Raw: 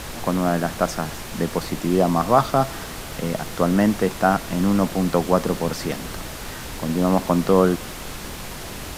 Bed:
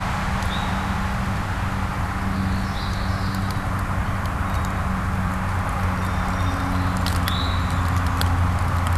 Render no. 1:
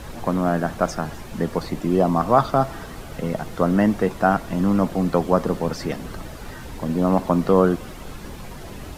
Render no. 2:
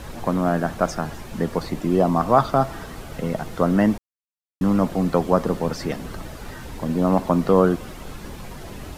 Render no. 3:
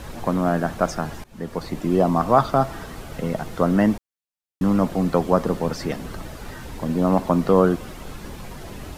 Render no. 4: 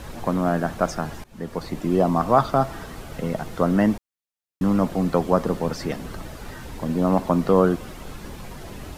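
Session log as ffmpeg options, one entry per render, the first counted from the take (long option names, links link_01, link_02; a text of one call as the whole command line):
ffmpeg -i in.wav -af "afftdn=noise_reduction=10:noise_floor=-34" out.wav
ffmpeg -i in.wav -filter_complex "[0:a]asplit=3[link_01][link_02][link_03];[link_01]atrim=end=3.98,asetpts=PTS-STARTPTS,afade=type=out:start_time=3.976:duration=0.004:curve=hsin[link_04];[link_02]atrim=start=3.98:end=4.61,asetpts=PTS-STARTPTS,volume=0[link_05];[link_03]atrim=start=4.61,asetpts=PTS-STARTPTS,afade=type=in:duration=0.004:curve=hsin[link_06];[link_04][link_05][link_06]concat=n=3:v=0:a=1" out.wav
ffmpeg -i in.wav -filter_complex "[0:a]asplit=2[link_01][link_02];[link_01]atrim=end=1.24,asetpts=PTS-STARTPTS,afade=type=out:start_time=1.236:duration=0.004:curve=hsin:silence=0.0891251[link_03];[link_02]atrim=start=1.24,asetpts=PTS-STARTPTS,afade=type=in:duration=0.79:curve=qsin:silence=0.0891251[link_04];[link_03][link_04]concat=n=2:v=0:a=1" out.wav
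ffmpeg -i in.wav -af "volume=-1dB" out.wav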